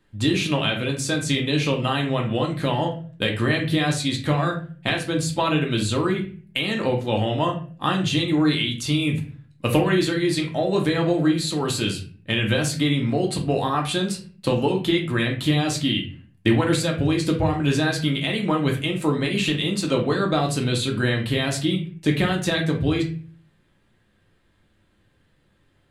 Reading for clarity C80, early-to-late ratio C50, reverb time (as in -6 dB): 14.5 dB, 8.5 dB, 0.45 s